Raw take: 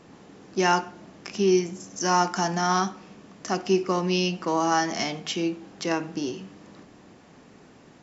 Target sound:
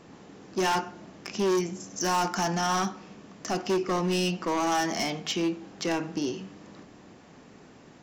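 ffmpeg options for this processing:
ffmpeg -i in.wav -af "volume=22dB,asoftclip=hard,volume=-22dB" out.wav

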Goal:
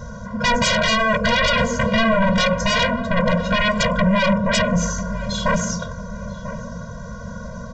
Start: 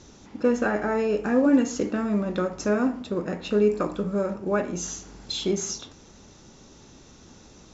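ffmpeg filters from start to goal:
ffmpeg -i in.wav -filter_complex "[0:a]highshelf=frequency=1900:width_type=q:width=3:gain=-10.5,aresample=16000,aeval=exprs='0.355*sin(PI/2*7.94*val(0)/0.355)':channel_layout=same,aresample=44100,asplit=2[link_01][link_02];[link_02]adelay=994,lowpass=frequency=1000:poles=1,volume=-11.5dB,asplit=2[link_03][link_04];[link_04]adelay=994,lowpass=frequency=1000:poles=1,volume=0.46,asplit=2[link_05][link_06];[link_06]adelay=994,lowpass=frequency=1000:poles=1,volume=0.46,asplit=2[link_07][link_08];[link_08]adelay=994,lowpass=frequency=1000:poles=1,volume=0.46,asplit=2[link_09][link_10];[link_10]adelay=994,lowpass=frequency=1000:poles=1,volume=0.46[link_11];[link_01][link_03][link_05][link_07][link_09][link_11]amix=inputs=6:normalize=0,afftfilt=real='re*eq(mod(floor(b*sr/1024/230),2),0)':imag='im*eq(mod(floor(b*sr/1024/230),2),0)':win_size=1024:overlap=0.75,volume=-2.5dB" out.wav

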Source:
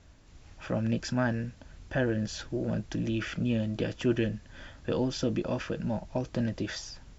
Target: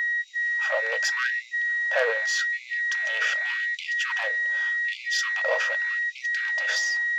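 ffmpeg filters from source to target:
ffmpeg -i in.wav -af "aeval=exprs='val(0)+0.0224*sin(2*PI*1900*n/s)':channel_layout=same,areverse,acompressor=mode=upward:threshold=-34dB:ratio=2.5,areverse,aeval=exprs='0.2*(cos(1*acos(clip(val(0)/0.2,-1,1)))-cos(1*PI/2))+0.0447*(cos(5*acos(clip(val(0)/0.2,-1,1)))-cos(5*PI/2))+0.00708*(cos(8*acos(clip(val(0)/0.2,-1,1)))-cos(8*PI/2))':channel_layout=same,afftfilt=real='re*gte(b*sr/1024,420*pow(2000/420,0.5+0.5*sin(2*PI*0.85*pts/sr)))':imag='im*gte(b*sr/1024,420*pow(2000/420,0.5+0.5*sin(2*PI*0.85*pts/sr)))':win_size=1024:overlap=0.75,volume=3.5dB" out.wav

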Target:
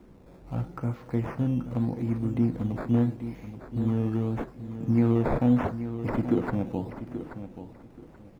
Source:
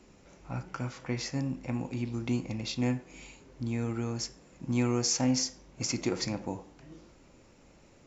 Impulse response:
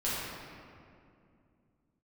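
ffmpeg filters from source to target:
-filter_complex "[0:a]asetrate=42336,aresample=44100,acrusher=samples=10:mix=1:aa=0.000001:lfo=1:lforange=10:lforate=0.8,tiltshelf=frequency=1100:gain=6.5,acrossover=split=2500[link_01][link_02];[link_02]acompressor=threshold=-59dB:ratio=4:attack=1:release=60[link_03];[link_01][link_03]amix=inputs=2:normalize=0,aecho=1:1:831|1662|2493:0.282|0.062|0.0136"

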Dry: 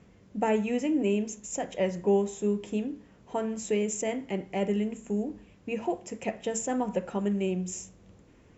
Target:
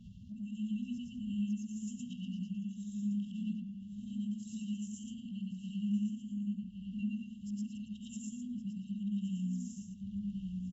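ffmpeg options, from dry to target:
ffmpeg -i in.wav -filter_complex "[0:a]afftfilt=real='re':imag='-im':win_size=8192:overlap=0.75,afftfilt=real='re*(1-between(b*sr/4096,250,2700))':imag='im*(1-between(b*sr/4096,250,2700))':win_size=4096:overlap=0.75,acompressor=mode=upward:threshold=-37dB:ratio=2.5,aemphasis=mode=reproduction:type=75kf,atempo=0.8,asplit=2[link_01][link_02];[link_02]adelay=1117,lowpass=frequency=2500:poles=1,volume=-4dB,asplit=2[link_03][link_04];[link_04]adelay=1117,lowpass=frequency=2500:poles=1,volume=0.2,asplit=2[link_05][link_06];[link_06]adelay=1117,lowpass=frequency=2500:poles=1,volume=0.2[link_07];[link_01][link_03][link_05][link_07]amix=inputs=4:normalize=0,volume=-1.5dB" out.wav

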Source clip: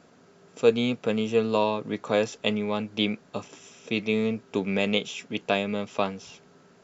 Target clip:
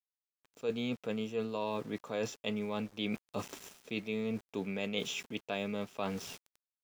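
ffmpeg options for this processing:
ffmpeg -i in.wav -af "aeval=exprs='val(0)*gte(abs(val(0)),0.00531)':channel_layout=same,areverse,acompressor=threshold=-37dB:ratio=4,areverse,volume=2dB" out.wav

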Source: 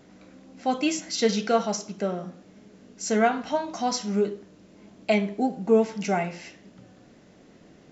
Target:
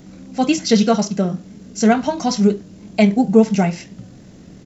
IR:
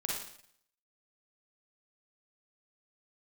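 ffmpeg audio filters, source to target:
-filter_complex "[0:a]bass=frequency=250:gain=12,treble=frequency=4000:gain=8,atempo=1.7,acrossover=split=5600[link_01][link_02];[link_02]acompressor=threshold=-41dB:ratio=4:attack=1:release=60[link_03];[link_01][link_03]amix=inputs=2:normalize=0,volume=5.5dB"

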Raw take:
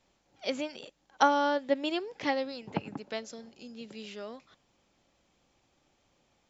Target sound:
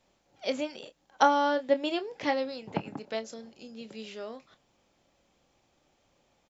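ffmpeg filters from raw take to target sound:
ffmpeg -i in.wav -filter_complex "[0:a]equalizer=frequency=580:width=1.5:gain=3,asplit=2[link_01][link_02];[link_02]adelay=27,volume=-11.5dB[link_03];[link_01][link_03]amix=inputs=2:normalize=0" out.wav

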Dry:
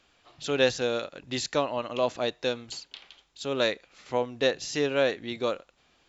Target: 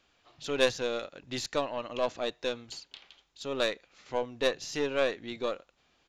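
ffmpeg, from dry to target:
ffmpeg -i in.wav -af "aresample=16000,aresample=44100,aeval=exprs='0.335*(cos(1*acos(clip(val(0)/0.335,-1,1)))-cos(1*PI/2))+0.0422*(cos(3*acos(clip(val(0)/0.335,-1,1)))-cos(3*PI/2))+0.0299*(cos(4*acos(clip(val(0)/0.335,-1,1)))-cos(4*PI/2))':channel_layout=same" out.wav

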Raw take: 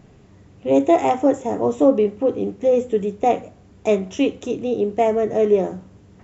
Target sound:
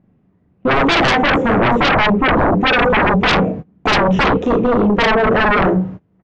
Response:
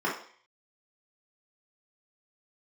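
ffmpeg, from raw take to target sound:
-filter_complex "[0:a]lowpass=2000,bandreject=frequency=50:width_type=h:width=6,bandreject=frequency=100:width_type=h:width=6,bandreject=frequency=150:width_type=h:width=6,bandreject=frequency=200:width_type=h:width=6,bandreject=frequency=250:width_type=h:width=6,bandreject=frequency=300:width_type=h:width=6,bandreject=frequency=350:width_type=h:width=6,bandreject=frequency=400:width_type=h:width=6,bandreject=frequency=450:width_type=h:width=6,bandreject=frequency=500:width_type=h:width=6,asplit=2[link_01][link_02];[link_02]adelay=38,volume=-3.5dB[link_03];[link_01][link_03]amix=inputs=2:normalize=0,asoftclip=type=tanh:threshold=-7dB,flanger=delay=3.6:depth=2.7:regen=-75:speed=0.42:shape=sinusoidal,agate=range=-26dB:threshold=-47dB:ratio=16:detection=peak,asetnsamples=nb_out_samples=441:pad=0,asendcmd='2.28 equalizer g 15;4.37 equalizer g 4.5',equalizer=frequency=170:width=0.74:gain=9,aeval=exprs='0.562*sin(PI/2*7.94*val(0)/0.562)':channel_layout=same,volume=-5dB"

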